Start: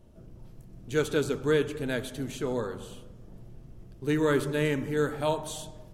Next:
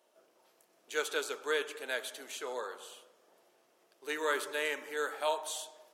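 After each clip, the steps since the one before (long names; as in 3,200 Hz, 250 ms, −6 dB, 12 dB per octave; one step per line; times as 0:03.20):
Bessel high-pass filter 740 Hz, order 4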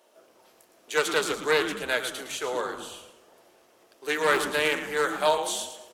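echo with shifted repeats 112 ms, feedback 30%, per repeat −130 Hz, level −10.5 dB
highs frequency-modulated by the lows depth 0.18 ms
level +9 dB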